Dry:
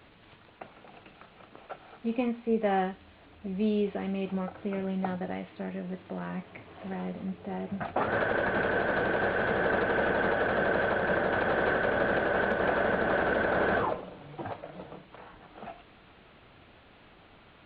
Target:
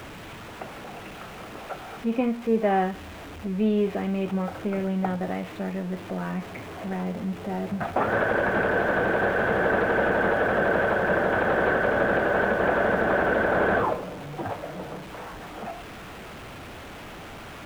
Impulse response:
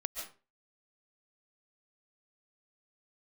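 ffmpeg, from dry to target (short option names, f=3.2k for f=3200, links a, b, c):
-filter_complex "[0:a]aeval=exprs='val(0)+0.5*0.01*sgn(val(0))':c=same,acrossover=split=2700[a][b];[b]acompressor=threshold=-52dB:ratio=4:attack=1:release=60[c];[a][c]amix=inputs=2:normalize=0,volume=4dB"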